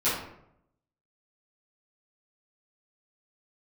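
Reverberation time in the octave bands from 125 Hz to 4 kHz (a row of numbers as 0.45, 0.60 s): 0.95, 0.85, 0.80, 0.70, 0.60, 0.45 s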